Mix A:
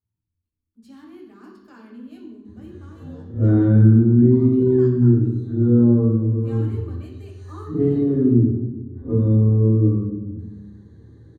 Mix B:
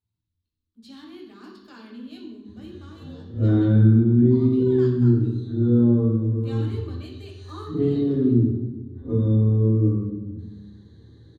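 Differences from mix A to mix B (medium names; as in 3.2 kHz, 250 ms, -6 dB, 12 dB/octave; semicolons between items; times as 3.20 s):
background -3.0 dB; master: add peaking EQ 3.8 kHz +14.5 dB 0.86 oct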